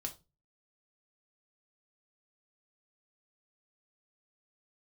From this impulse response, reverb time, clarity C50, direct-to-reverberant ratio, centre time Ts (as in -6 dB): 0.25 s, 15.0 dB, 2.5 dB, 9 ms